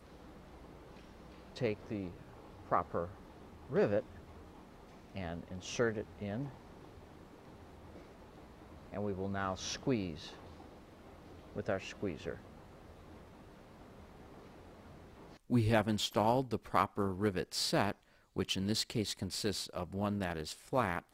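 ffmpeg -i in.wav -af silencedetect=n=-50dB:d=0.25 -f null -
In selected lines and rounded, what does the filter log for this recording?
silence_start: 17.92
silence_end: 18.36 | silence_duration: 0.44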